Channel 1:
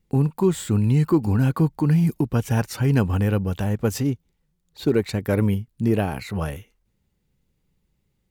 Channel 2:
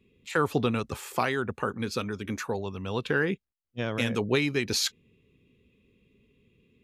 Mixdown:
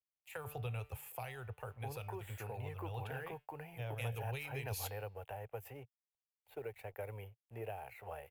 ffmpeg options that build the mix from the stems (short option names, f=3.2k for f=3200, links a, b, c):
-filter_complex "[0:a]acrossover=split=290 2700:gain=0.0708 1 0.141[a][b][c];[a][b][c]amix=inputs=3:normalize=0,adelay=1700,volume=-4dB[d];[1:a]bandreject=f=148.1:t=h:w=4,bandreject=f=296.2:t=h:w=4,bandreject=f=444.3:t=h:w=4,bandreject=f=592.4:t=h:w=4,bandreject=f=740.5:t=h:w=4,bandreject=f=888.6:t=h:w=4,bandreject=f=1.0367k:t=h:w=4,bandreject=f=1.1848k:t=h:w=4,bandreject=f=1.3329k:t=h:w=4,bandreject=f=1.481k:t=h:w=4,bandreject=f=1.6291k:t=h:w=4,bandreject=f=1.7772k:t=h:w=4,bandreject=f=1.9253k:t=h:w=4,bandreject=f=2.0734k:t=h:w=4,bandreject=f=2.2215k:t=h:w=4,bandreject=f=2.3696k:t=h:w=4,bandreject=f=2.5177k:t=h:w=4,bandreject=f=2.6658k:t=h:w=4,bandreject=f=2.8139k:t=h:w=4,bandreject=f=2.962k:t=h:w=4,bandreject=f=3.1101k:t=h:w=4,bandreject=f=3.2582k:t=h:w=4,bandreject=f=3.4063k:t=h:w=4,bandreject=f=3.5544k:t=h:w=4,bandreject=f=3.7025k:t=h:w=4,bandreject=f=3.8506k:t=h:w=4,bandreject=f=3.9987k:t=h:w=4,bandreject=f=4.1468k:t=h:w=4,bandreject=f=4.2949k:t=h:w=4,bandreject=f=4.443k:t=h:w=4,bandreject=f=4.5911k:t=h:w=4,bandreject=f=4.7392k:t=h:w=4,bandreject=f=4.8873k:t=h:w=4,bandreject=f=5.0354k:t=h:w=4,bandreject=f=5.1835k:t=h:w=4,bandreject=f=5.3316k:t=h:w=4,bandreject=f=5.4797k:t=h:w=4,bandreject=f=5.6278k:t=h:w=4,volume=-5.5dB[e];[d][e]amix=inputs=2:normalize=0,aeval=exprs='sgn(val(0))*max(abs(val(0))-0.001,0)':c=same,firequalizer=gain_entry='entry(120,0);entry(180,-25);entry(300,-25);entry(460,-9);entry(780,-2);entry(1100,-14);entry(2600,-5);entry(3900,-17);entry(5900,-16);entry(12000,5)':delay=0.05:min_phase=1,acrossover=split=190|3000[f][g][h];[g]acompressor=threshold=-42dB:ratio=6[i];[f][i][h]amix=inputs=3:normalize=0"